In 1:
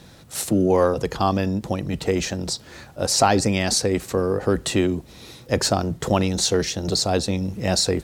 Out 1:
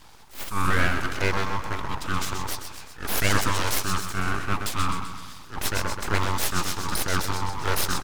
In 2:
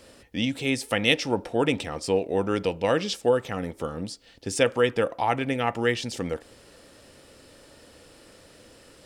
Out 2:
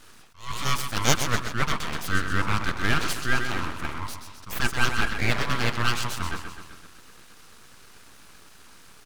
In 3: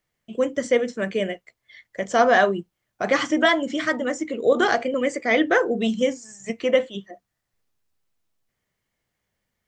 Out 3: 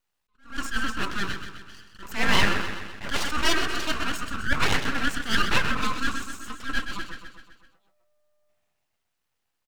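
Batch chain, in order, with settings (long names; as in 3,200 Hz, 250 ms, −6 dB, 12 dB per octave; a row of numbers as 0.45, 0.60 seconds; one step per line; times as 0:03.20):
on a send: repeating echo 128 ms, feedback 57%, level −8.5 dB
on the sum: frequency shifter +300 Hz
full-wave rectification
level that may rise only so fast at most 170 dB per second
loudness normalisation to −27 LKFS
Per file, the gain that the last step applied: −2.0, +2.5, −0.5 decibels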